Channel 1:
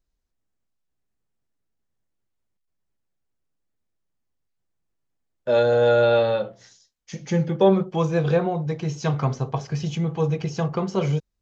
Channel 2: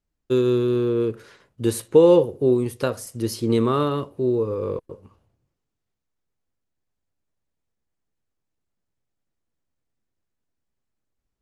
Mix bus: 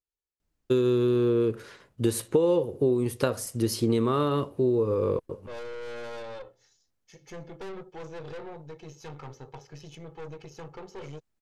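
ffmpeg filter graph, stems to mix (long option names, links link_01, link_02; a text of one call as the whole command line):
ffmpeg -i stem1.wav -i stem2.wav -filter_complex "[0:a]highpass=frequency=150:poles=1,aecho=1:1:2.3:0.72,aeval=exprs='(tanh(17.8*val(0)+0.65)-tanh(0.65))/17.8':channel_layout=same,volume=-12dB[link_01];[1:a]adelay=400,volume=1.5dB[link_02];[link_01][link_02]amix=inputs=2:normalize=0,acompressor=threshold=-20dB:ratio=6" out.wav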